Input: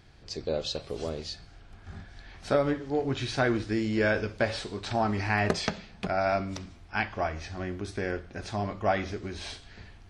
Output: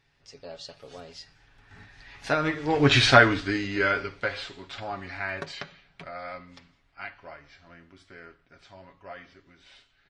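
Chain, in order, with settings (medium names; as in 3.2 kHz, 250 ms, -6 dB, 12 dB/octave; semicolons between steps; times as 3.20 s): Doppler pass-by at 2.97 s, 29 m/s, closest 5.5 m; peaking EQ 2.1 kHz +10 dB 2.7 oct; comb 7.2 ms, depth 55%; trim +7.5 dB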